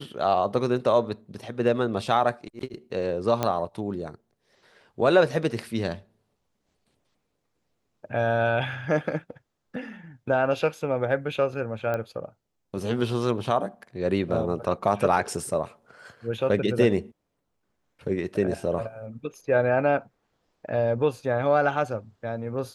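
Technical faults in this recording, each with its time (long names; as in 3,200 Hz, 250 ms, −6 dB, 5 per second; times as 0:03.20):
0:03.43: click −10 dBFS
0:11.94: click −17 dBFS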